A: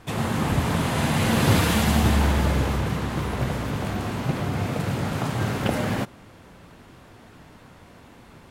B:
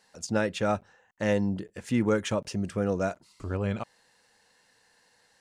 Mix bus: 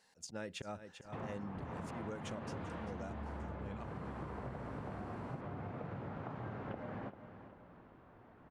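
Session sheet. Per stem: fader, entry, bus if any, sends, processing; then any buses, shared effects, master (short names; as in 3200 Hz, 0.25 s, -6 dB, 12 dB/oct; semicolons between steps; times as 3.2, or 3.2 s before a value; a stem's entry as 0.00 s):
-8.5 dB, 1.05 s, no send, echo send -18 dB, LPF 1300 Hz 12 dB/oct; low shelf 340 Hz -6.5 dB
-6.0 dB, 0.00 s, no send, echo send -14 dB, auto swell 0.185 s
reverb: off
echo: feedback echo 0.393 s, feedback 39%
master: compressor 10:1, threshold -40 dBFS, peak gain reduction 15 dB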